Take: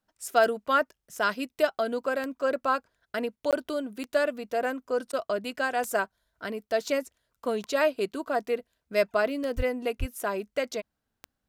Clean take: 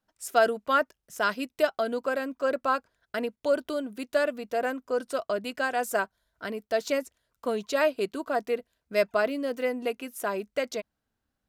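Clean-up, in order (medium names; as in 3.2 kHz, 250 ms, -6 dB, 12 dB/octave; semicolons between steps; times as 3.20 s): de-click; 9.56–9.68 s: high-pass 140 Hz 24 dB/octave; 9.99–10.11 s: high-pass 140 Hz 24 dB/octave; interpolate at 3.51 s, 17 ms; interpolate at 5.12 s, 10 ms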